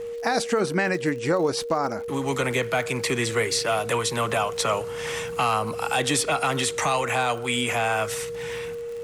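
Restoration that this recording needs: de-click; band-stop 470 Hz, Q 30

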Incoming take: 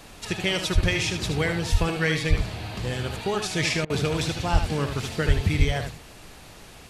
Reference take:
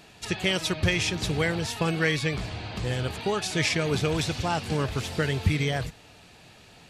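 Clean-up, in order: de-plosive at 0.74/1.71/2.29/4.52/5.27/5.58 s; interpolate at 3.85 s, 48 ms; noise print and reduce 7 dB; inverse comb 76 ms -7.5 dB

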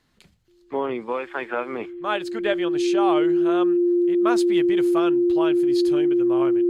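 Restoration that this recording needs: band-stop 350 Hz, Q 30

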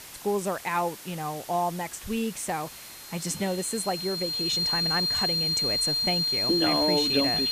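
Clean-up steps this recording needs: band-stop 4.2 kHz, Q 30; noise reduction 29 dB, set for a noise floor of -44 dBFS

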